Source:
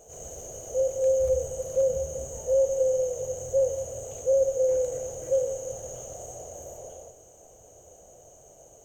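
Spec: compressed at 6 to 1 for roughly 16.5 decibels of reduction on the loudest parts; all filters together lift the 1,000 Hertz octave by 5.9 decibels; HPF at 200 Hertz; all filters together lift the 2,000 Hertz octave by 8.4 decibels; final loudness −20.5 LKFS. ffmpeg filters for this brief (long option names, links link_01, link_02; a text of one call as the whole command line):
ffmpeg -i in.wav -af "highpass=200,equalizer=frequency=1000:width_type=o:gain=8,equalizer=frequency=2000:width_type=o:gain=8,acompressor=threshold=-36dB:ratio=6,volume=18dB" out.wav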